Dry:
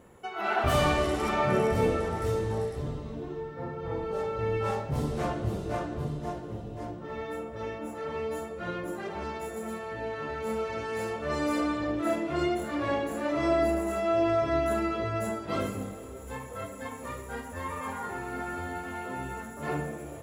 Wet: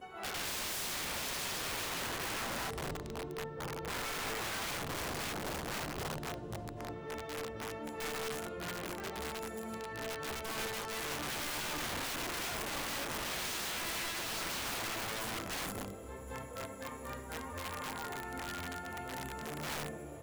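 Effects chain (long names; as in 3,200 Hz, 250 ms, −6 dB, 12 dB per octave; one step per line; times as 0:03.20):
backwards echo 222 ms −6.5 dB
wrap-around overflow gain 27.5 dB
level −6 dB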